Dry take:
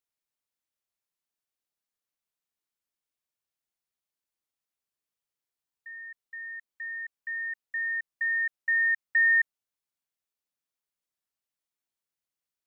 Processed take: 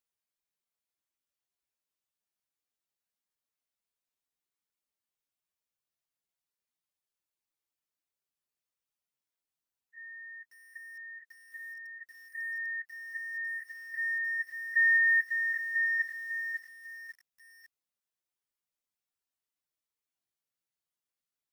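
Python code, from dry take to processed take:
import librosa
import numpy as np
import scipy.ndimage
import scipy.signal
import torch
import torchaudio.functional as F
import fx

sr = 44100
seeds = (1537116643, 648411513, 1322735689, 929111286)

y = fx.stretch_vocoder_free(x, sr, factor=1.7)
y = fx.echo_crushed(y, sr, ms=548, feedback_pct=35, bits=9, wet_db=-6.5)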